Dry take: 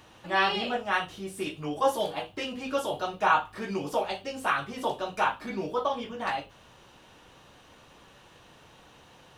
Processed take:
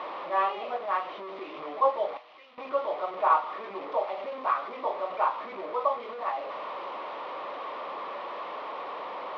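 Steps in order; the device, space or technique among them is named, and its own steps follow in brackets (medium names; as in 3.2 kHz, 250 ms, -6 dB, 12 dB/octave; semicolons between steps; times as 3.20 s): digital answering machine (band-pass 330–3000 Hz; one-bit delta coder 32 kbps, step -29 dBFS; cabinet simulation 360–3000 Hz, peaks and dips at 590 Hz +7 dB, 1.1 kHz +10 dB, 1.6 kHz -10 dB, 2.8 kHz -7 dB); 2.17–2.58 s: amplifier tone stack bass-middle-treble 5-5-5; trim -3.5 dB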